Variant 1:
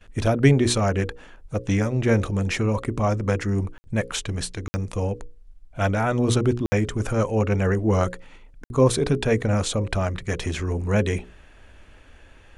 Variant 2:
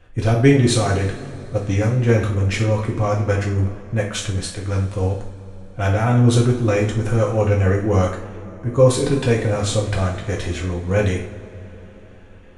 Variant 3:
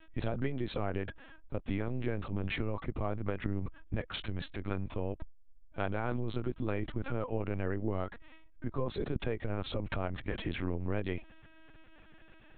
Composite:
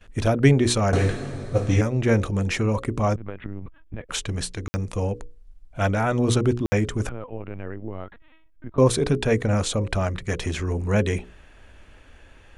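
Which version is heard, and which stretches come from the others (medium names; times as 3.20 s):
1
0.93–1.81 s: from 2
3.16–4.09 s: from 3
7.09–8.78 s: from 3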